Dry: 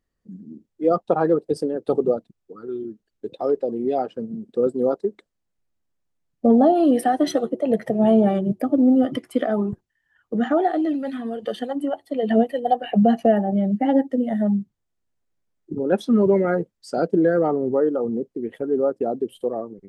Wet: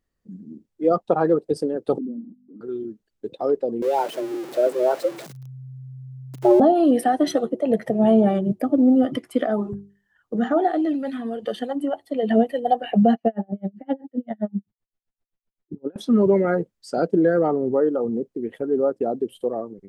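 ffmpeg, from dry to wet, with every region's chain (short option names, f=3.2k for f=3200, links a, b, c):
-filter_complex "[0:a]asettb=1/sr,asplit=3[a][b][c];[a]atrim=end=1.984[d];[b]atrim=start=1.98:end=2.61,asetpts=PTS-STARTPTS,afade=t=in:d=0.004:c=qsin,afade=t=out:st=0.626:d=0.004:c=qsin,aeval=exprs='val(0)+0.5*0.0473*sgn(val(0))':c=same,aeval=exprs='val(0)+0.00891*(sin(2*PI*50*n/s)+sin(2*PI*2*50*n/s)/2+sin(2*PI*3*50*n/s)/3+sin(2*PI*4*50*n/s)/4+sin(2*PI*5*50*n/s)/5)':c=same,asuperpass=centerf=250:order=4:qfactor=3.8[e];[c]atrim=start=2.606[f];[d][e]acrossfade=d=0.004:c1=hsin:c2=qsin[g];[g][f]acrossfade=d=0.004:c1=qsin:c2=hsin,asettb=1/sr,asplit=3[h][i][j];[h]atrim=end=3.824[k];[i]atrim=start=3.82:end=6.6,asetpts=PTS-STARTPTS,afade=t=in:d=0.004:c=qsin,afade=t=out:st=2.776:d=0.004:c=qsin,aeval=exprs='val(0)+0.5*0.0251*sgn(val(0))':c=same,afreqshift=130[l];[j]atrim=start=6.596[m];[k][l]acrossfade=d=0.004:c1=hsin:c2=qsin[n];[n][m]acrossfade=d=0.004:c1=qsin:c2=hsin,asettb=1/sr,asplit=3[o][p][q];[o]atrim=end=9.474[r];[p]atrim=start=9.47:end=10.68,asetpts=PTS-STARTPTS,afade=t=in:d=0.004:c=qsin,afade=t=out:st=1.206:d=0.004:c=qsin,equalizer=f=2.4k:t=o:w=0.61:g=-5.5,bandreject=f=50:t=h:w=6,bandreject=f=100:t=h:w=6,bandreject=f=150:t=h:w=6,bandreject=f=200:t=h:w=6,bandreject=f=250:t=h:w=6,bandreject=f=300:t=h:w=6,bandreject=f=350:t=h:w=6,bandreject=f=400:t=h:w=6,bandreject=f=450:t=h:w=6[s];[q]atrim=start=10.676[t];[r][s]acrossfade=d=0.004:c1=hsin:c2=qsin[u];[u][t]acrossfade=d=0.004:c1=qsin:c2=hsin,asettb=1/sr,asplit=3[v][w][x];[v]atrim=end=13.144[y];[w]atrim=start=13.14:end=15.96,asetpts=PTS-STARTPTS,afade=t=in:d=0.004:c=qsin,afade=t=out:st=2.816:d=0.004:c=qsin,lowpass=4.6k,aeval=exprs='val(0)*pow(10,-39*(0.5-0.5*cos(2*PI*7.7*n/s))/20)':c=same[z];[x]atrim=start=15.956[aa];[y][z]acrossfade=d=0.004:c1=hsin:c2=qsin[ab];[ab][aa]acrossfade=d=0.004:c1=qsin:c2=hsin"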